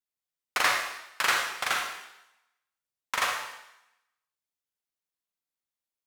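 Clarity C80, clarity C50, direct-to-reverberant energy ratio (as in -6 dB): 5.5 dB, 2.5 dB, 1.0 dB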